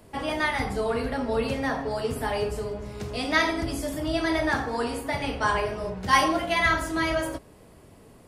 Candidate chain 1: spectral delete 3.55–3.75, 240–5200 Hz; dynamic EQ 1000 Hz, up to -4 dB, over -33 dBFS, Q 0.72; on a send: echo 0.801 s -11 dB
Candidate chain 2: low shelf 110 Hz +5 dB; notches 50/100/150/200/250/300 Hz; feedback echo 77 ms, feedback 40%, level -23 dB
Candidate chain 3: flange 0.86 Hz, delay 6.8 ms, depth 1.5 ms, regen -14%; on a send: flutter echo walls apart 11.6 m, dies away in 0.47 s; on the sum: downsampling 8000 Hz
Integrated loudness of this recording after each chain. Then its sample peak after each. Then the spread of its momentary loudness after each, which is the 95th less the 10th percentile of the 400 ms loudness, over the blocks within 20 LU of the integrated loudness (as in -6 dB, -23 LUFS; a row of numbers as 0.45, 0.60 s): -28.0, -26.0, -29.0 LUFS; -9.5, -8.0, -10.5 dBFS; 9, 9, 9 LU